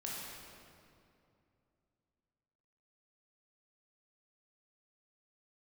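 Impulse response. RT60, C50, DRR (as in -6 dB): 2.6 s, -2.5 dB, -5.0 dB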